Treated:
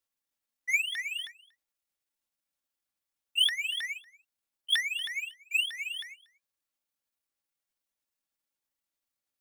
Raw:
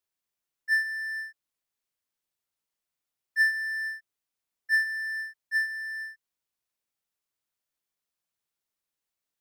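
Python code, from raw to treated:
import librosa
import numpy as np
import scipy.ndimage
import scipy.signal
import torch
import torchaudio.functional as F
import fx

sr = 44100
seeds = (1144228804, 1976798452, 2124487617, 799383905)

p1 = fx.pitch_ramps(x, sr, semitones=12.0, every_ms=317)
p2 = p1 + 0.37 * np.pad(p1, (int(3.6 * sr / 1000.0), 0))[:len(p1)]
y = p2 + fx.echo_single(p2, sr, ms=236, db=-23.5, dry=0)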